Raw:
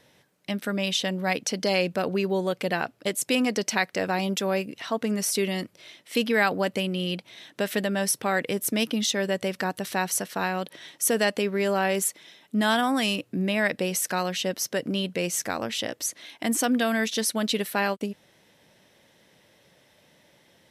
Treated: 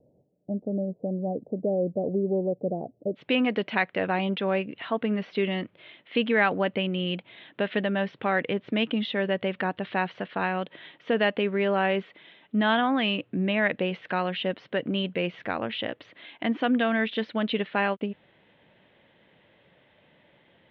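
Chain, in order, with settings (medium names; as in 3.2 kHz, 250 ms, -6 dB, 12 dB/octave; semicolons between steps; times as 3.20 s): steep low-pass 680 Hz 48 dB/octave, from 3.15 s 3.4 kHz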